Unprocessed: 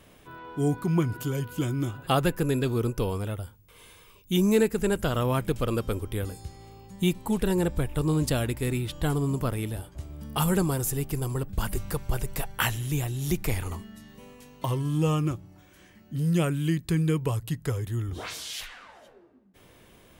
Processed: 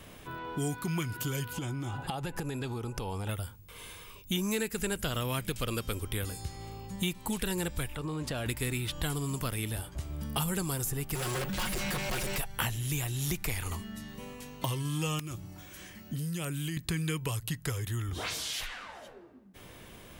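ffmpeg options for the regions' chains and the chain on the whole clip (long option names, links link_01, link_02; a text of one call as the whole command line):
ffmpeg -i in.wav -filter_complex "[0:a]asettb=1/sr,asplit=3[link_01][link_02][link_03];[link_01]atrim=end=1.534[link_04];[link_02]atrim=start=1.53:end=3.29,asetpts=PTS-STARTPTS,afade=type=in:duration=0.004:curve=qsin,afade=type=out:start_time=1.756:duration=0.004:curve=qsin,lowpass=10000,equalizer=frequency=830:width_type=o:width=0.29:gain=14,acompressor=threshold=-32dB:ratio=12:attack=3.2:release=140:knee=1:detection=peak[link_05];[link_03]atrim=start=3.286[link_06];[link_04][link_05]acrossfade=duration=0.004:curve1=hsin:curve2=qsin[link_07];[link_07][link_06]acrossfade=duration=0.004:curve1=qsin:curve2=hsin,asettb=1/sr,asplit=3[link_08][link_09][link_10];[link_08]atrim=end=7.954[link_11];[link_09]atrim=start=7.95:end=8.46,asetpts=PTS-STARTPTS,afade=type=in:duration=0.004:curve=qsin,afade=type=out:start_time=0.506:duration=0.004:curve=qsin,acompressor=threshold=-27dB:ratio=10:attack=3.2:release=140:knee=1:detection=peak,asplit=2[link_12][link_13];[link_13]highpass=frequency=720:poles=1,volume=10dB,asoftclip=type=tanh:threshold=-20dB[link_14];[link_12][link_14]amix=inputs=2:normalize=0,lowpass=frequency=1300:poles=1,volume=-6dB[link_15];[link_10]atrim=start=8.456[link_16];[link_11][link_15]acrossfade=duration=0.004:curve1=hsin:curve2=qsin[link_17];[link_17][link_16]acrossfade=duration=0.004:curve1=qsin:curve2=hsin,asettb=1/sr,asplit=3[link_18][link_19][link_20];[link_18]atrim=end=11.154[link_21];[link_19]atrim=start=11.15:end=12.38,asetpts=PTS-STARTPTS,afade=type=in:duration=0.004:curve=qsin,afade=type=out:start_time=1.226:duration=0.004:curve=qsin,volume=28.5dB,asoftclip=hard,volume=-28.5dB,aecho=1:1:5.5:0.85,atrim=end_sample=54243,asplit=2[link_22][link_23];[link_23]highpass=frequency=720:poles=1,volume=30dB,asoftclip=type=tanh:threshold=-23dB[link_24];[link_22][link_24]amix=inputs=2:normalize=0,lowpass=frequency=2900:poles=1,volume=-6dB[link_25];[link_20]atrim=start=12.376[link_26];[link_21][link_25]acrossfade=duration=0.004:curve1=hsin:curve2=qsin[link_27];[link_27][link_26]acrossfade=duration=0.004:curve1=qsin:curve2=hsin,asettb=1/sr,asplit=3[link_28][link_29][link_30];[link_28]atrim=end=15.194[link_31];[link_29]atrim=start=15.19:end=16.77,asetpts=PTS-STARTPTS,afade=type=in:duration=0.004:curve=qsin,afade=type=out:start_time=1.576:duration=0.004:curve=qsin,highshelf=frequency=3700:gain=7.5,acompressor=threshold=-32dB:ratio=10:attack=3.2:release=140:knee=1:detection=peak,aeval=exprs='(mod(22.4*val(0)+1,2)-1)/22.4':channel_layout=same[link_32];[link_30]atrim=start=16.766[link_33];[link_31][link_32]acrossfade=duration=0.004:curve1=hsin:curve2=qsin[link_34];[link_34][link_33]acrossfade=duration=0.004:curve1=qsin:curve2=hsin,equalizer=frequency=420:width_type=o:width=1.8:gain=-2.5,acrossover=split=890|1800[link_35][link_36][link_37];[link_35]acompressor=threshold=-39dB:ratio=4[link_38];[link_36]acompressor=threshold=-53dB:ratio=4[link_39];[link_37]acompressor=threshold=-40dB:ratio=4[link_40];[link_38][link_39][link_40]amix=inputs=3:normalize=0,volume=5.5dB" out.wav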